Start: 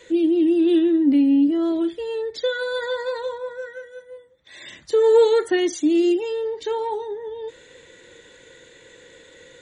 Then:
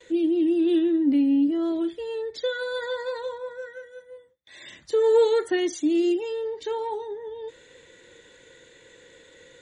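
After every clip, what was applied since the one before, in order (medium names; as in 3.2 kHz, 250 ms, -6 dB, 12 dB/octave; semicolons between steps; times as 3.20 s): gate with hold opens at -45 dBFS; trim -4 dB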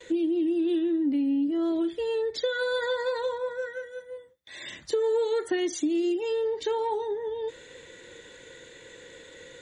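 compression 6:1, threshold -28 dBFS, peak gain reduction 12 dB; trim +4 dB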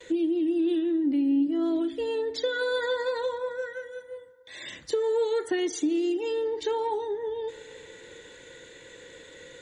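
FDN reverb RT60 3.3 s, high-frequency decay 0.4×, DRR 19 dB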